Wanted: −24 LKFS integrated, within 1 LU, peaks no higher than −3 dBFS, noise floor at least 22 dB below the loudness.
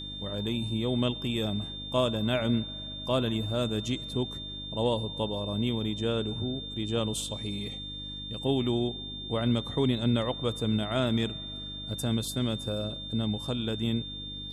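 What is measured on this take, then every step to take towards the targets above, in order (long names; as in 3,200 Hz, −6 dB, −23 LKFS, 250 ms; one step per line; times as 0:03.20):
mains hum 50 Hz; hum harmonics up to 300 Hz; level of the hum −42 dBFS; interfering tone 3,600 Hz; level of the tone −38 dBFS; integrated loudness −30.5 LKFS; sample peak −12.5 dBFS; target loudness −24.0 LKFS
→ hum removal 50 Hz, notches 6
notch filter 3,600 Hz, Q 30
level +6.5 dB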